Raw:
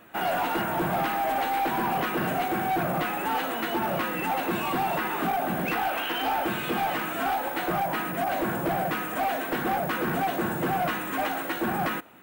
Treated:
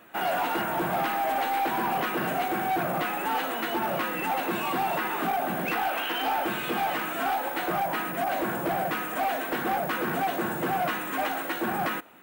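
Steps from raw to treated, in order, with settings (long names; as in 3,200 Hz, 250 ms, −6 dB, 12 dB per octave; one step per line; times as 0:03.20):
low-shelf EQ 150 Hz −9 dB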